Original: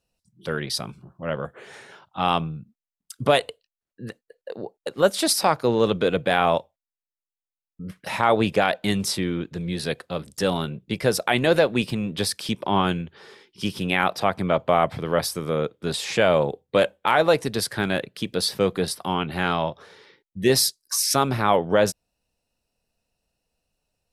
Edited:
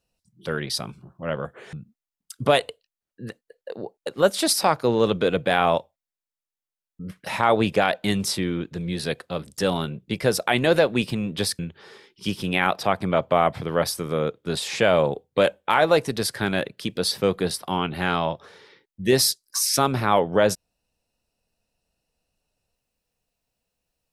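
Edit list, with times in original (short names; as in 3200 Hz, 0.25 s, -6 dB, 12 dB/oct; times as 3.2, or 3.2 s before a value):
1.73–2.53 cut
12.39–12.96 cut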